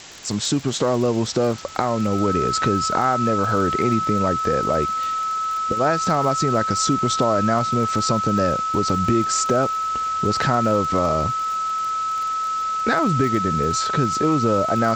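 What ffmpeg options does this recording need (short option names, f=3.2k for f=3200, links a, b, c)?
-af "adeclick=t=4,bandreject=f=1.3k:w=30,afwtdn=0.014"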